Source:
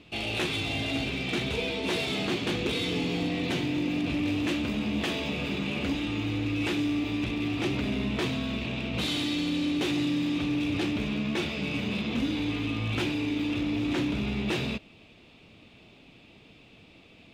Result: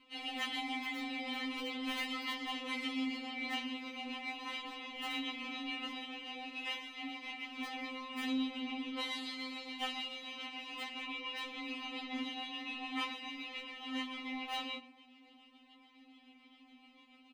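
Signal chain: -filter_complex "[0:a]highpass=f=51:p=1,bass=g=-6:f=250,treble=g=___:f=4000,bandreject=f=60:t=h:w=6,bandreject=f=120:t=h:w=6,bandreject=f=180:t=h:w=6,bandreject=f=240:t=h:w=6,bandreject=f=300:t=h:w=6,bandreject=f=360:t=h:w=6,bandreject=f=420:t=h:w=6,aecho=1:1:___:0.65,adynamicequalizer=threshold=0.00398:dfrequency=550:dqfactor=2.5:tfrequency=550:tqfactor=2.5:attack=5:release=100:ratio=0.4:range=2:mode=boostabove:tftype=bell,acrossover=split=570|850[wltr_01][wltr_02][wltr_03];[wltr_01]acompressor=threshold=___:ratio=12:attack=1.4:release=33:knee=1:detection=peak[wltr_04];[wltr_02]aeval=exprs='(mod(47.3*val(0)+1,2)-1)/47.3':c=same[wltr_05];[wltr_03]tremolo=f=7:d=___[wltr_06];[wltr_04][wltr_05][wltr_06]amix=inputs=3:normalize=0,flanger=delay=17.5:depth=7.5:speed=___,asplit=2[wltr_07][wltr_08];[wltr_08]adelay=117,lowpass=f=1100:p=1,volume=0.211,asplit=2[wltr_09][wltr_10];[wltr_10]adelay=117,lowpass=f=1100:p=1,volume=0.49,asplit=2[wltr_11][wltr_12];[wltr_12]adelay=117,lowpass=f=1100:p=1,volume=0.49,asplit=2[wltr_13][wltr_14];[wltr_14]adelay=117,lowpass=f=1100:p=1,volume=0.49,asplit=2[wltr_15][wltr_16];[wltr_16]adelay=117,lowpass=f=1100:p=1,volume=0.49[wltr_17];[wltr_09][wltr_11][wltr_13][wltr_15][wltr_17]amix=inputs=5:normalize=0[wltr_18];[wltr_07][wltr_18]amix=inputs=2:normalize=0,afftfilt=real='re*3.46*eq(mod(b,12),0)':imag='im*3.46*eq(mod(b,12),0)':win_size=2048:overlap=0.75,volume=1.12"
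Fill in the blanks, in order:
-9, 2.9, 0.0126, 0.47, 0.44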